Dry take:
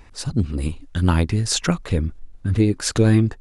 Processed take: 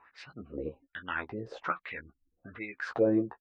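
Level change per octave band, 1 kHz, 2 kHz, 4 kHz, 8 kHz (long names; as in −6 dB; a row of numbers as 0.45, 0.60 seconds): −6.5 dB, −5.0 dB, −23.0 dB, below −35 dB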